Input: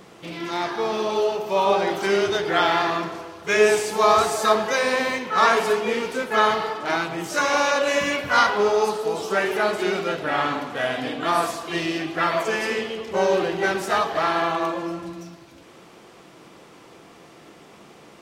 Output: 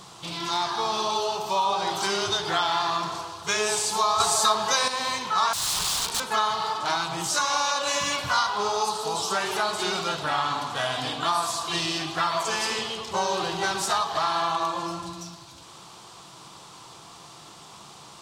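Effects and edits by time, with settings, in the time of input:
0:04.20–0:04.88: clip gain +8.5 dB
0:05.53–0:06.20: wrap-around overflow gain 23.5 dB
whole clip: graphic EQ with 10 bands 125 Hz +5 dB, 250 Hz −7 dB, 500 Hz −8 dB, 1,000 Hz +9 dB, 2,000 Hz −8 dB, 4,000 Hz +9 dB, 8,000 Hz +9 dB; downward compressor 3 to 1, threshold −23 dBFS

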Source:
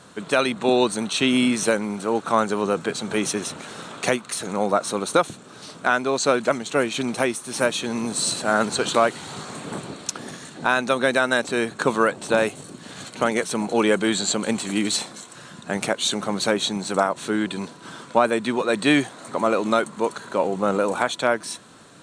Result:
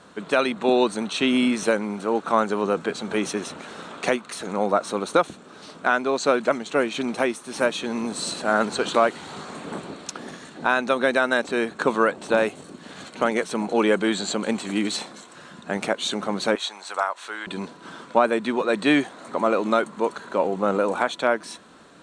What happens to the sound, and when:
0:16.55–0:17.47: Chebyshev high-pass filter 1,000 Hz
whole clip: low-pass filter 3,300 Hz 6 dB per octave; parametric band 120 Hz −11 dB 0.57 octaves

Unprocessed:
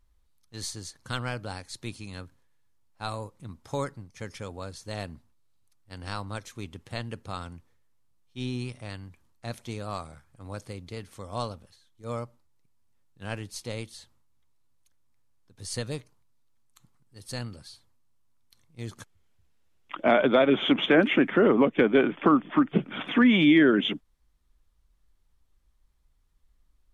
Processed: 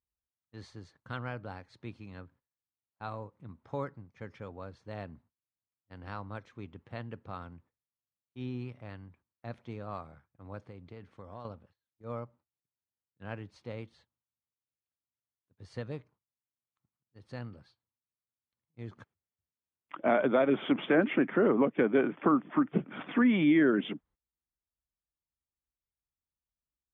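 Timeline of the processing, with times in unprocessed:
0:10.68–0:11.45: downward compressor 4 to 1, threshold −36 dBFS
whole clip: low-pass filter 2,000 Hz 12 dB per octave; noise gate −55 dBFS, range −17 dB; high-pass filter 77 Hz; level −5 dB

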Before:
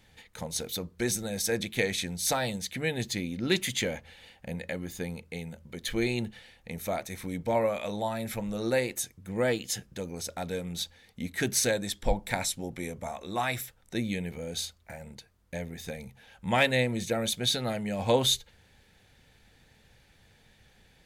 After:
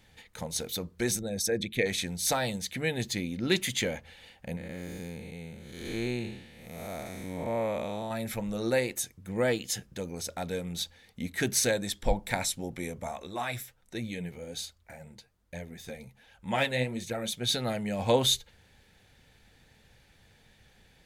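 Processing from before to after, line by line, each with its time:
0:01.19–0:01.86: spectral envelope exaggerated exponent 1.5
0:04.57–0:08.11: spectrum smeared in time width 277 ms
0:13.27–0:17.49: flanger 1.3 Hz, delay 0.6 ms, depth 9.5 ms, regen +42%

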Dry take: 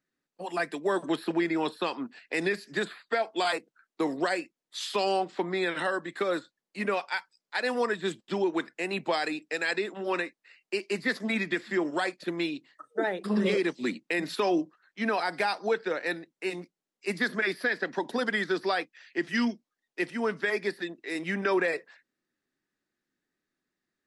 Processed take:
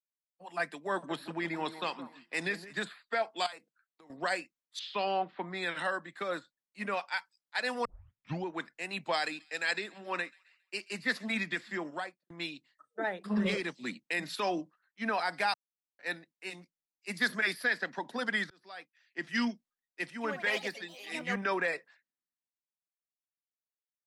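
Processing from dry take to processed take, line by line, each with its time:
0:00.93–0:02.81: delay that swaps between a low-pass and a high-pass 167 ms, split 1,600 Hz, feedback 53%, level −10.5 dB
0:03.46–0:04.10: downward compressor 16 to 1, threshold −37 dBFS
0:04.79–0:05.43: low-pass filter 3,800 Hz 24 dB per octave
0:07.85: tape start 0.60 s
0:08.95–0:11.34: delay with a high-pass on its return 136 ms, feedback 66%, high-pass 2,100 Hz, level −20 dB
0:11.88–0:12.30: fade out and dull
0:15.54–0:15.99: silence
0:17.14–0:17.90: high-shelf EQ 7,900 Hz +9.5 dB
0:18.50–0:19.18: fade in
0:20.11–0:21.56: delay with pitch and tempo change per echo 95 ms, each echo +4 semitones, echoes 3, each echo −6 dB
whole clip: parametric band 370 Hz −8.5 dB 1 octave; multiband upward and downward expander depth 70%; level −2.5 dB

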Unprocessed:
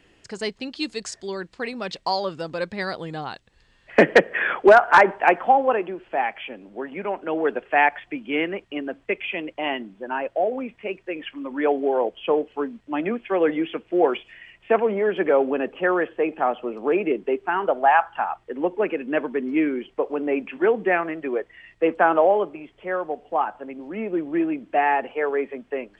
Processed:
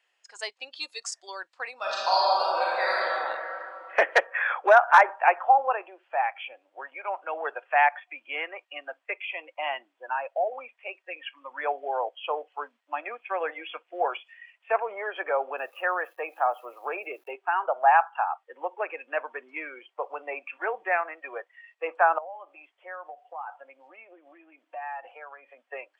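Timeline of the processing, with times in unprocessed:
0:01.75–0:03.12: thrown reverb, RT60 3 s, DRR −8 dB
0:15.58–0:17.31: centre clipping without the shift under −49 dBFS
0:22.18–0:25.65: downward compressor 12 to 1, threshold −30 dBFS
whole clip: high-pass filter 670 Hz 24 dB per octave; noise reduction from a noise print of the clip's start 12 dB; dynamic equaliser 2,900 Hz, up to −5 dB, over −35 dBFS, Q 0.7

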